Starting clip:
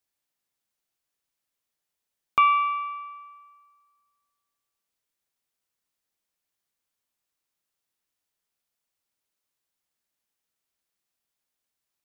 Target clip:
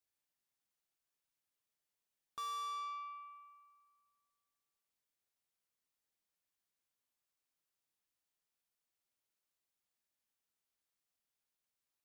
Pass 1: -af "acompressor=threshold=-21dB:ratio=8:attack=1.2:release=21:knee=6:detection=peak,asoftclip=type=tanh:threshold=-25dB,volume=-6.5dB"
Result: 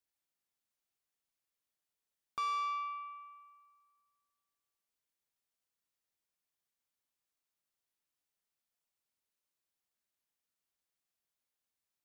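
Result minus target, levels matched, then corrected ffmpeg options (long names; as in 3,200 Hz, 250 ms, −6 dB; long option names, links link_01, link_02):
soft clipping: distortion −7 dB
-af "acompressor=threshold=-21dB:ratio=8:attack=1.2:release=21:knee=6:detection=peak,asoftclip=type=tanh:threshold=-33.5dB,volume=-6.5dB"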